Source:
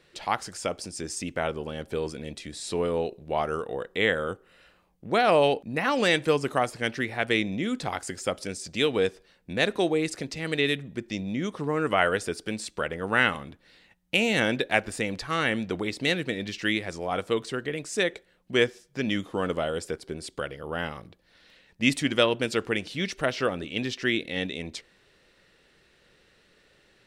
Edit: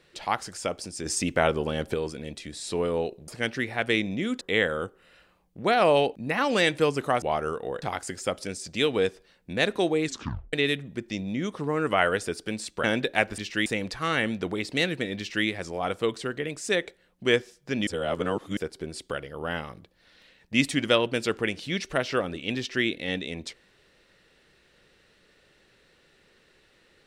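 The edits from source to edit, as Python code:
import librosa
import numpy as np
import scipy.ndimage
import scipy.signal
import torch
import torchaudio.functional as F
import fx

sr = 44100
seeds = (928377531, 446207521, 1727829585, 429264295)

y = fx.edit(x, sr, fx.clip_gain(start_s=1.06, length_s=0.88, db=6.0),
    fx.swap(start_s=3.28, length_s=0.6, other_s=6.69, other_length_s=1.13),
    fx.tape_stop(start_s=10.04, length_s=0.49),
    fx.cut(start_s=12.84, length_s=1.56),
    fx.duplicate(start_s=16.46, length_s=0.28, to_s=14.94),
    fx.reverse_span(start_s=19.15, length_s=0.7), tone=tone)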